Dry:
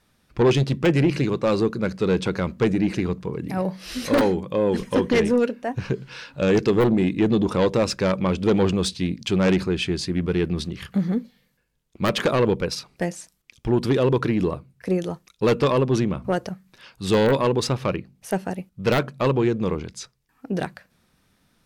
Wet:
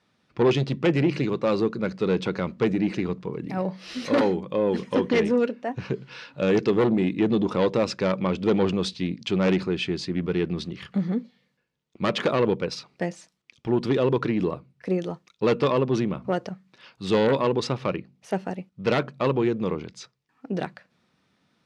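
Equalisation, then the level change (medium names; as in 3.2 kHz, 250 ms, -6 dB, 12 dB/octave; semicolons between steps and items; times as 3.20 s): band-pass 130–5100 Hz; band-stop 1.6 kHz, Q 20; -2.0 dB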